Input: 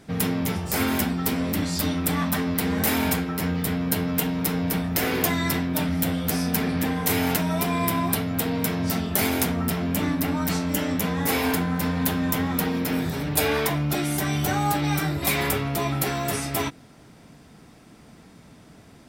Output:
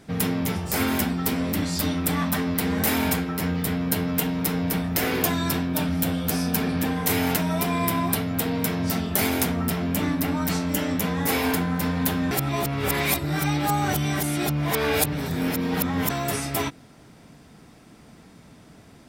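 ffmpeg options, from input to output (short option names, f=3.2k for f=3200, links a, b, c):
-filter_complex "[0:a]asettb=1/sr,asplit=3[a][b][c];[a]atrim=end=5.204[d];[b]atrim=start=5.2:end=6.97,asetpts=PTS-STARTPTS,afade=t=in:d=0.004:c=qsin,afade=t=out:st=1.766:d=0.004:c=qsin,bandreject=f=2k:w=12[e];[c]atrim=start=6.966[f];[d][e]acrossfade=d=0.004:c1=hsin:c2=qsin[g];[g][f]acrossfade=d=0.004:c1=qsin:c2=hsin,asplit=3[h][i][j];[h]atrim=end=12.312[k];[i]atrim=start=12.308:end=16.102,asetpts=PTS-STARTPTS,areverse[l];[j]atrim=start=16.098[m];[k][l]acrossfade=d=0.004:c1=hsin:c2=hsin[n];[n][m]acrossfade=d=0.004:c1=hsin:c2=hsin"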